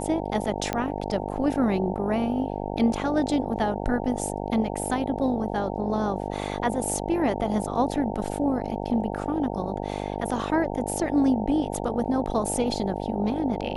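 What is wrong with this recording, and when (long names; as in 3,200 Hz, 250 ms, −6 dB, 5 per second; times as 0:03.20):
mains buzz 50 Hz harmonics 18 −31 dBFS
0:00.73: click −12 dBFS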